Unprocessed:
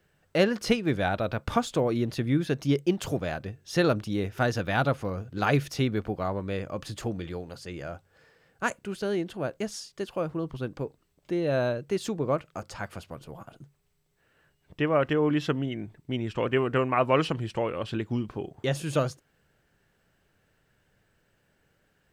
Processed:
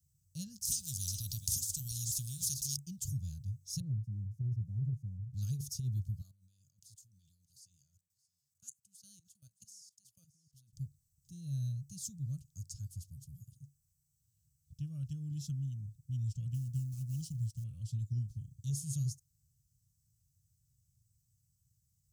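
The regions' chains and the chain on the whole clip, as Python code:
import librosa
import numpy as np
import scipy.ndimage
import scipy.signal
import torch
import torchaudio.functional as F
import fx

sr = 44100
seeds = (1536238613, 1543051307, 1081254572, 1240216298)

y = fx.chain(x, sr, fx.echo_single(ms=428, db=-17.5),
    fx.spectral_comp(ratio=4.0), at=(0.65, 2.77))
y = fx.chain(y, sr, fx.crossing_spikes(level_db=-25.5),
    fx.ellip_bandpass(low_hz=110.0, high_hz=910.0, order=3, stop_db=40), at=(3.8, 5.34))
y = fx.chain(y, sr, fx.highpass(hz=960.0, slope=6),
    fx.level_steps(step_db=18),
    fx.echo_single(ms=621, db=-20.0), at=(6.21, 10.73))
y = fx.chain(y, sr, fx.law_mismatch(coded='A'),
    fx.band_shelf(hz=980.0, db=-9.0, octaves=2.8), at=(16.54, 17.64))
y = scipy.signal.sosfilt(scipy.signal.ellip(3, 1.0, 50, [120.0, 6200.0], 'bandstop', fs=sr, output='sos'), y)
y = fx.over_compress(y, sr, threshold_db=-33.0, ratio=-0.5)
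y = scipy.signal.sosfilt(scipy.signal.butter(2, 61.0, 'highpass', fs=sr, output='sos'), y)
y = y * librosa.db_to_amplitude(1.0)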